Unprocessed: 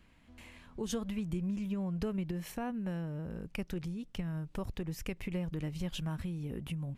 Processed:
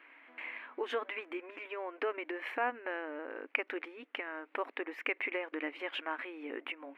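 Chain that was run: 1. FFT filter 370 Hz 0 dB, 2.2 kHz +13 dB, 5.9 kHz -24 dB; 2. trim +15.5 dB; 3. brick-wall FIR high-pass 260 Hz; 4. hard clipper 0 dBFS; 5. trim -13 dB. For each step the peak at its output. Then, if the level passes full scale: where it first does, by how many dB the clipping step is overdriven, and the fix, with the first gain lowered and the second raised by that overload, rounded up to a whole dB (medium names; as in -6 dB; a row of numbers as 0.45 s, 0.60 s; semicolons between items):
-17.5 dBFS, -2.0 dBFS, -2.5 dBFS, -2.5 dBFS, -15.5 dBFS; nothing clips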